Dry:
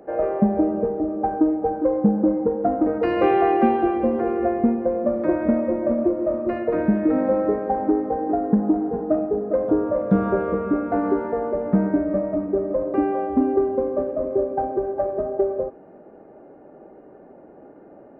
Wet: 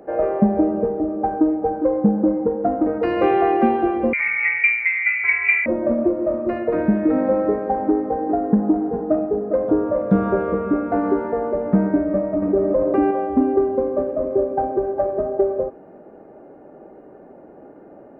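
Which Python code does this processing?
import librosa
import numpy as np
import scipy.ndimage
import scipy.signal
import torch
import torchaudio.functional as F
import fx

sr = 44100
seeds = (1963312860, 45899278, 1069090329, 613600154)

p1 = fx.rider(x, sr, range_db=10, speed_s=2.0)
p2 = x + F.gain(torch.from_numpy(p1), -1.0).numpy()
p3 = fx.freq_invert(p2, sr, carrier_hz=2600, at=(4.13, 5.66))
p4 = fx.env_flatten(p3, sr, amount_pct=50, at=(12.42, 13.11))
y = F.gain(torch.from_numpy(p4), -4.0).numpy()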